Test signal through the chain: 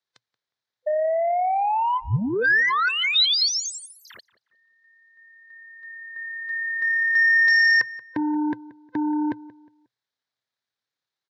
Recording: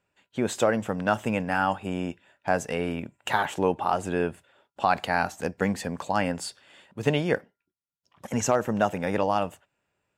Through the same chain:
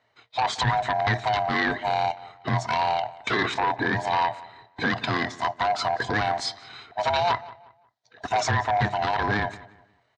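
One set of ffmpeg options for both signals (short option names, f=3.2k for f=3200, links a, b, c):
-filter_complex "[0:a]afftfilt=real='real(if(lt(b,1008),b+24*(1-2*mod(floor(b/24),2)),b),0)':imag='imag(if(lt(b,1008),b+24*(1-2*mod(floor(b/24),2)),b),0)':win_size=2048:overlap=0.75,lowshelf=f=160:g=-2,alimiter=limit=-18dB:level=0:latency=1:release=194,tremolo=f=35:d=0.261,aeval=exprs='0.126*sin(PI/2*2*val(0)/0.126)':c=same,highpass=110,equalizer=f=120:t=q:w=4:g=10,equalizer=f=180:t=q:w=4:g=-5,equalizer=f=310:t=q:w=4:g=-4,equalizer=f=1.7k:t=q:w=4:g=5,equalizer=f=2.7k:t=q:w=4:g=-5,equalizer=f=3.9k:t=q:w=4:g=6,lowpass=f=5.6k:w=0.5412,lowpass=f=5.6k:w=1.3066,asplit=2[a][b];[b]adelay=180,lowpass=f=2.8k:p=1,volume=-18.5dB,asplit=2[c][d];[d]adelay=180,lowpass=f=2.8k:p=1,volume=0.33,asplit=2[e][f];[f]adelay=180,lowpass=f=2.8k:p=1,volume=0.33[g];[a][c][e][g]amix=inputs=4:normalize=0"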